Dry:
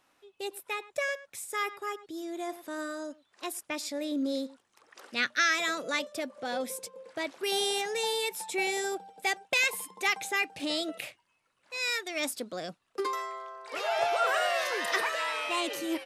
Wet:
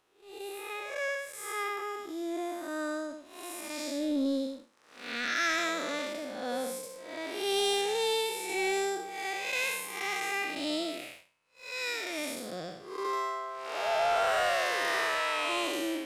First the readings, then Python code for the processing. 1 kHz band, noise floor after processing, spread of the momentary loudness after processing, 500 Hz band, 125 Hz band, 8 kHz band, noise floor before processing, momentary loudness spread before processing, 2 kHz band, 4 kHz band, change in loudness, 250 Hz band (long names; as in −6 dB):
0.0 dB, −60 dBFS, 13 LU, +1.0 dB, can't be measured, −1.5 dB, −74 dBFS, 13 LU, −2.0 dB, −1.0 dB, −0.5 dB, +1.5 dB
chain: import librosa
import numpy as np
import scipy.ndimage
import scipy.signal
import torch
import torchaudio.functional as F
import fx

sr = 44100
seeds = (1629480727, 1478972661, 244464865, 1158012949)

y = fx.spec_blur(x, sr, span_ms=238.0)
y = fx.leveller(y, sr, passes=1)